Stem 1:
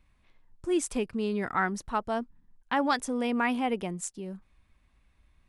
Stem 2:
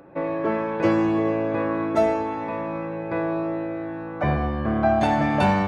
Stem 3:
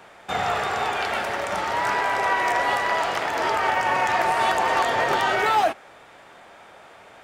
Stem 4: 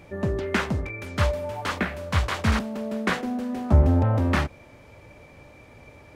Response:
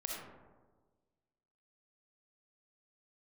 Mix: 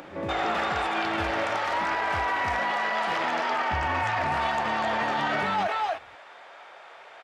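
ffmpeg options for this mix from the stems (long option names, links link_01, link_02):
-filter_complex "[0:a]highpass=1500,volume=-18.5dB,asplit=2[link_01][link_02];[1:a]highpass=110,acompressor=mode=upward:threshold=-31dB:ratio=2.5,volume=-7dB[link_03];[2:a]acrossover=split=450 5900:gain=0.112 1 0.141[link_04][link_05][link_06];[link_04][link_05][link_06]amix=inputs=3:normalize=0,volume=0.5dB,asplit=2[link_07][link_08];[link_08]volume=-8dB[link_09];[3:a]volume=-12dB[link_10];[link_02]apad=whole_len=250430[link_11];[link_03][link_11]sidechaincompress=threshold=-60dB:ratio=8:attack=16:release=264[link_12];[link_09]aecho=0:1:256:1[link_13];[link_01][link_12][link_07][link_10][link_13]amix=inputs=5:normalize=0,alimiter=limit=-18.5dB:level=0:latency=1:release=35"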